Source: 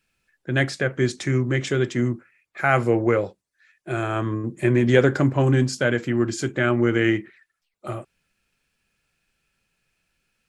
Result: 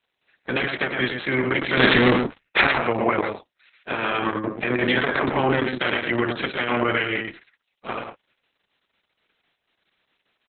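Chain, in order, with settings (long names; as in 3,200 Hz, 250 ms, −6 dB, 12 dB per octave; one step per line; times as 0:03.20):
ceiling on every frequency bin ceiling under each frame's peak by 20 dB
high-pass filter 170 Hz 12 dB per octave
brickwall limiter −13.5 dBFS, peak gain reduction 11 dB
0:01.77–0:02.67: leveller curve on the samples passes 5
single-tap delay 112 ms −5.5 dB
level +2.5 dB
Opus 6 kbit/s 48,000 Hz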